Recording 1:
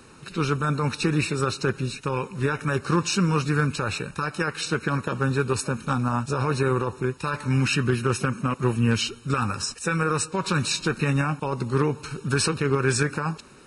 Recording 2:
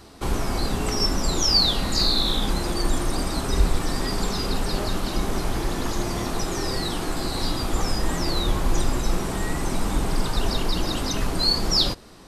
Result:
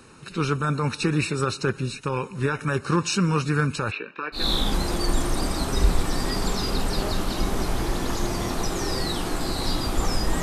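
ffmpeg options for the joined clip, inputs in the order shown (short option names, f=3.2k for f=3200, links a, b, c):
-filter_complex "[0:a]asplit=3[a][b][c];[a]afade=t=out:st=3.9:d=0.02[d];[b]highpass=f=280:w=0.5412,highpass=f=280:w=1.3066,equalizer=f=570:t=q:w=4:g=-4,equalizer=f=820:t=q:w=4:g=-8,equalizer=f=1.3k:t=q:w=4:g=-4,equalizer=f=2.5k:t=q:w=4:g=3,lowpass=f=3.1k:w=0.5412,lowpass=f=3.1k:w=1.3066,afade=t=in:st=3.9:d=0.02,afade=t=out:st=4.48:d=0.02[e];[c]afade=t=in:st=4.48:d=0.02[f];[d][e][f]amix=inputs=3:normalize=0,apad=whole_dur=10.42,atrim=end=10.42,atrim=end=4.48,asetpts=PTS-STARTPTS[g];[1:a]atrim=start=2.08:end=8.18,asetpts=PTS-STARTPTS[h];[g][h]acrossfade=d=0.16:c1=tri:c2=tri"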